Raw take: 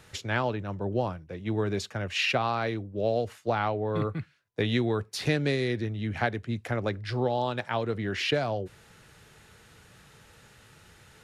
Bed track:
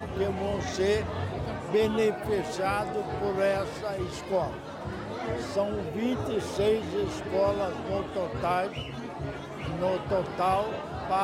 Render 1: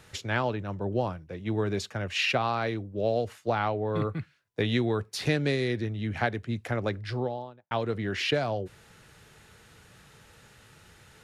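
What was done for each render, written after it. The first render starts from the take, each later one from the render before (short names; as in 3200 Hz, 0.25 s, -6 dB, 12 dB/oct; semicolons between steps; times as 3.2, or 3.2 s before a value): 6.97–7.71 studio fade out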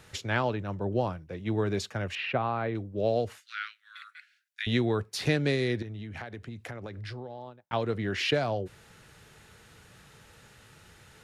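2.15–2.75 air absorption 470 m; 3.4–4.67 steep high-pass 1400 Hz 72 dB/oct; 5.82–7.73 compressor 16:1, threshold -35 dBFS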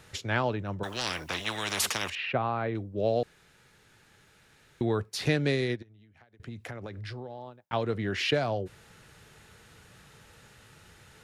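0.83–2.1 spectral compressor 10:1; 3.23–4.81 room tone; 5.61–6.4 upward expander 2.5:1, over -42 dBFS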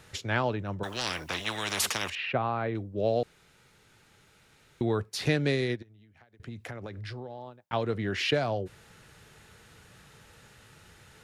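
3.22–4.93 notch 1700 Hz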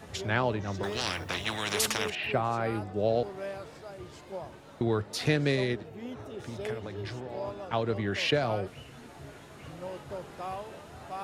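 add bed track -12 dB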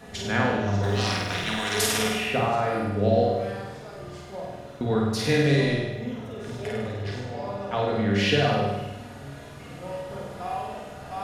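flutter echo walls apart 8.6 m, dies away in 1 s; shoebox room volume 970 m³, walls furnished, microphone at 1.8 m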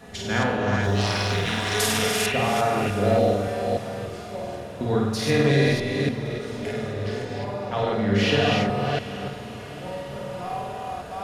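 reverse delay 0.29 s, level -3 dB; diffused feedback echo 0.734 s, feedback 51%, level -15.5 dB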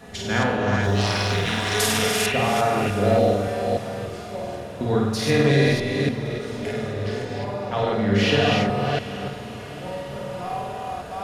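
gain +1.5 dB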